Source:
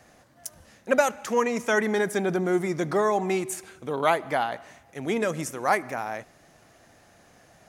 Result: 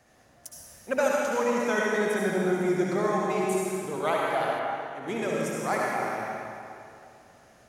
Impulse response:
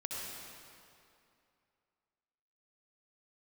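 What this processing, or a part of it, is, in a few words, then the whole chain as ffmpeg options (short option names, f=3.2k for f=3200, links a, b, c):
stairwell: -filter_complex "[1:a]atrim=start_sample=2205[a];[0:a][a]afir=irnorm=-1:irlink=0,asettb=1/sr,asplit=3[b][c][d];[b]atrim=end=4.594[e];[c]atrim=start=4.59:end=5.08,asetpts=PTS-STARTPTS,afade=t=in:d=0.004:c=qsin,afade=t=out:st=0.486:d=0.004:c=qsin,bass=f=250:g=-5,treble=f=4k:g=-8[f];[d]atrim=start=5.076[g];[e][f]acrossfade=d=0.004:c1=hsin:c2=qsin[h];[h][g]acrossfade=d=0.004:c1=qsin:c2=hsin,volume=-3dB"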